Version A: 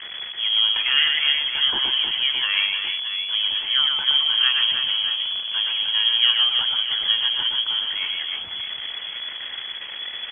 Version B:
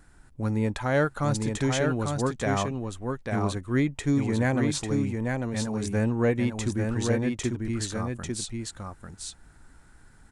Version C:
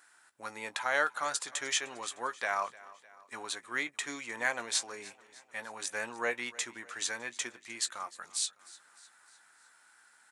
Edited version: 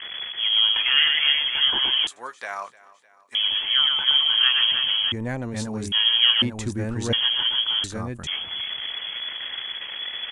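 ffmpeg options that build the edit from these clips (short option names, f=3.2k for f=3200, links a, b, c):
-filter_complex "[1:a]asplit=3[a][b][c];[0:a]asplit=5[d][e][f][g][h];[d]atrim=end=2.072[i];[2:a]atrim=start=2.068:end=3.352[j];[e]atrim=start=3.348:end=5.122[k];[a]atrim=start=5.118:end=5.922[l];[f]atrim=start=5.918:end=6.422[m];[b]atrim=start=6.418:end=7.132[n];[g]atrim=start=7.128:end=7.842[o];[c]atrim=start=7.838:end=8.272[p];[h]atrim=start=8.268[q];[i][j]acrossfade=d=0.004:c1=hsin:c2=hsin[r];[r][k]acrossfade=d=0.004:c1=hsin:c2=hsin[s];[s][l]acrossfade=d=0.004:c1=hsin:c2=hsin[t];[t][m]acrossfade=d=0.004:c1=hsin:c2=hsin[u];[u][n]acrossfade=d=0.004:c1=hsin:c2=hsin[v];[v][o]acrossfade=d=0.004:c1=hsin:c2=hsin[w];[w][p]acrossfade=d=0.004:c1=hsin:c2=hsin[x];[x][q]acrossfade=d=0.004:c1=hsin:c2=hsin"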